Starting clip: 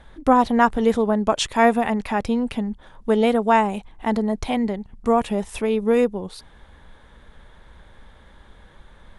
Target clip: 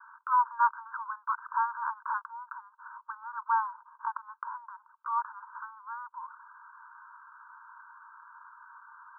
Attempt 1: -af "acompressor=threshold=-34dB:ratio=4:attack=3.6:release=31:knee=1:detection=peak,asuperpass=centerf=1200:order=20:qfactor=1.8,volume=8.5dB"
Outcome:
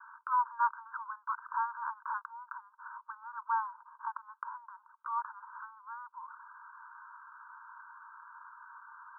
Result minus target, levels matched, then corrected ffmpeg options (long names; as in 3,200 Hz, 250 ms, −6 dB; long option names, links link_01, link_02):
downward compressor: peak gain reduction +4.5 dB
-af "acompressor=threshold=-28dB:ratio=4:attack=3.6:release=31:knee=1:detection=peak,asuperpass=centerf=1200:order=20:qfactor=1.8,volume=8.5dB"